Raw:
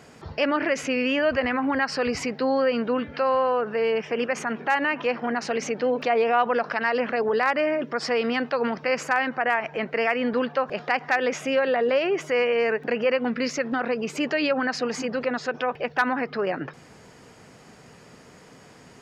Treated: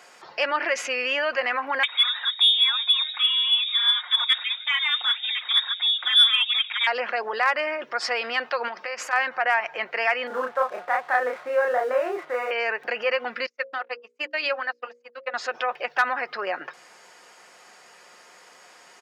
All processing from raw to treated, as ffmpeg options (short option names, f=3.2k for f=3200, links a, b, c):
-filter_complex "[0:a]asettb=1/sr,asplit=3[a][b][c];[a]atrim=end=1.834[d];[b]atrim=start=1.83:end=6.87,asetpts=PTS-STARTPTS,afade=t=in:d=0.004:c=qsin,afade=t=out:st=5.036:d=0.004:c=qsin,equalizer=f=1k:t=o:w=0.91:g=-11.5,aphaser=in_gain=1:out_gain=1:delay=3.4:decay=0.5:speed=1.6:type=sinusoidal,lowpass=f=3.3k:t=q:w=0.5098,lowpass=f=3.3k:t=q:w=0.6013,lowpass=f=3.3k:t=q:w=0.9,lowpass=f=3.3k:t=q:w=2.563,afreqshift=-3900[e];[c]atrim=start=6.866[f];[d][e]acrossfade=d=0.004:c1=hsin:c2=qsin[g];[g][f]acrossfade=d=0.004:c1=qsin:c2=hsin,asettb=1/sr,asplit=3[h][i][j];[h]atrim=end=8.684[k];[i]atrim=start=8.68:end=9.13,asetpts=PTS-STARTPTS,afade=t=in:d=0.004:c=qsin,afade=t=out:st=0.446:d=0.004:c=qsin,bandreject=f=50:t=h:w=6,bandreject=f=100:t=h:w=6,bandreject=f=150:t=h:w=6,bandreject=f=200:t=h:w=6,bandreject=f=250:t=h:w=6,bandreject=f=300:t=h:w=6,bandreject=f=350:t=h:w=6,bandreject=f=400:t=h:w=6,acompressor=threshold=-29dB:ratio=3:attack=3.2:release=140:knee=1:detection=peak[l];[j]atrim=start=9.126[m];[k][l]acrossfade=d=0.004:c1=hsin:c2=qsin[n];[n][m]acrossfade=d=0.004:c1=qsin:c2=hsin,asettb=1/sr,asplit=3[o][p][q];[o]atrim=end=10.274[r];[p]atrim=start=10.27:end=12.51,asetpts=PTS-STARTPTS,afade=t=in:d=0.004:c=qsin,afade=t=out:st=2.236:d=0.004:c=qsin,lowpass=f=1.6k:w=0.5412,lowpass=f=1.6k:w=1.3066,aeval=exprs='sgn(val(0))*max(abs(val(0))-0.00355,0)':c=same,asplit=2[s][t];[t]adelay=32,volume=-2dB[u];[s][u]amix=inputs=2:normalize=0,atrim=end_sample=98784[v];[q]atrim=start=12.506[w];[r][v]acrossfade=d=0.004:c1=hsin:c2=qsin[x];[x][w]acrossfade=d=0.004:c1=qsin:c2=hsin,asettb=1/sr,asplit=3[y][z][aa];[y]atrim=end=13.464[ab];[z]atrim=start=13.46:end=15.34,asetpts=PTS-STARTPTS,afade=t=in:d=0.004:c=qsin,afade=t=out:st=1.876:d=0.004:c=qsin,agate=range=-52dB:threshold=-25dB:ratio=16:release=100:detection=peak,lowshelf=f=220:g=-9.5,bandreject=f=60:t=h:w=6,bandreject=f=120:t=h:w=6,bandreject=f=180:t=h:w=6,bandreject=f=240:t=h:w=6,bandreject=f=300:t=h:w=6,bandreject=f=360:t=h:w=6,bandreject=f=420:t=h:w=6,bandreject=f=480:t=h:w=6,bandreject=f=540:t=h:w=6[ac];[aa]atrim=start=15.336[ad];[ab][ac]acrossfade=d=0.004:c1=hsin:c2=qsin[ae];[ae][ad]acrossfade=d=0.004:c1=qsin:c2=hsin,highpass=740,aecho=1:1:5.6:0.32,acontrast=51,volume=-3.5dB"